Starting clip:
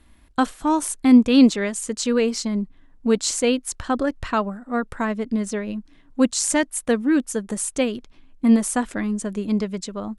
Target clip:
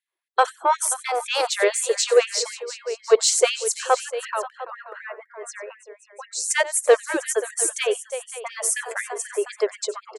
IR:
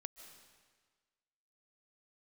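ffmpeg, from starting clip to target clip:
-filter_complex "[0:a]asplit=3[a][b][c];[a]afade=t=out:st=4:d=0.02[d];[b]acompressor=threshold=-31dB:ratio=3,afade=t=in:st=4:d=0.02,afade=t=out:st=6.5:d=0.02[e];[c]afade=t=in:st=6.5:d=0.02[f];[d][e][f]amix=inputs=3:normalize=0,afftdn=nr=29:nf=-43,adynamicequalizer=threshold=0.0224:dfrequency=440:dqfactor=0.88:tfrequency=440:tqfactor=0.88:attack=5:release=100:ratio=0.375:range=2.5:mode=boostabove:tftype=bell,aecho=1:1:92|335|531|700:0.106|0.168|0.141|0.15,acontrast=51,afftfilt=real='re*gte(b*sr/1024,340*pow(1700/340,0.5+0.5*sin(2*PI*4*pts/sr)))':imag='im*gte(b*sr/1024,340*pow(1700/340,0.5+0.5*sin(2*PI*4*pts/sr)))':win_size=1024:overlap=0.75,volume=-1dB"

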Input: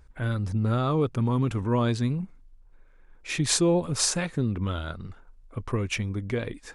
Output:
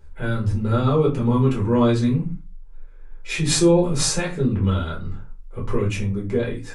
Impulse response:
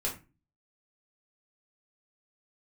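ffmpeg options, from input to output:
-filter_complex "[0:a]asettb=1/sr,asplit=3[a][b][c];[a]atrim=end=5.924[d];[b]atrim=start=5.92:end=6.39,asetpts=PTS-STARTPTS,afade=t=in:d=0.004:c=qsin,afade=t=out:st=0.466:d=0.004:c=qsin,equalizer=f=2.9k:t=o:w=2.2:g=-7[e];[c]atrim=start=6.386[f];[d][e]acrossfade=d=0.004:c1=hsin:c2=qsin[g];[g][f]acrossfade=d=0.004:c1=qsin:c2=hsin[h];[1:a]atrim=start_sample=2205,afade=t=out:st=0.35:d=0.01,atrim=end_sample=15876[i];[h][i]afir=irnorm=-1:irlink=0"

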